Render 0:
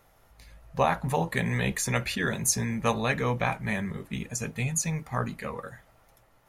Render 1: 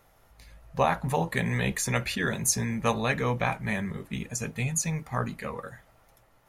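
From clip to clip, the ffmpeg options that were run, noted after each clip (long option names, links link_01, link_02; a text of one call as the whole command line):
ffmpeg -i in.wav -af anull out.wav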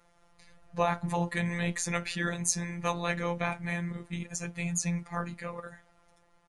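ffmpeg -i in.wav -af "afftfilt=real='hypot(re,im)*cos(PI*b)':imag='0':win_size=1024:overlap=0.75,aresample=22050,aresample=44100" out.wav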